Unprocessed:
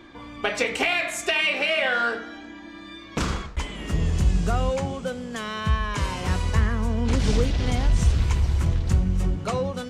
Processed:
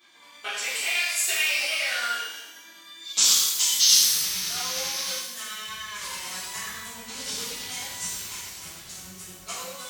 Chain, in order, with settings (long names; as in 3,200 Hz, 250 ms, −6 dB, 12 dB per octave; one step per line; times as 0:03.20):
0:03.79–0:05.16: sound drawn into the spectrogram noise 860–6,500 Hz −33 dBFS
0:03.01–0:03.94: flat-topped bell 5,100 Hz +15.5 dB
shaped tremolo triangle 9.5 Hz, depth 80%
first difference
reverb with rising layers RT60 1 s, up +12 semitones, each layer −8 dB, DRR −11 dB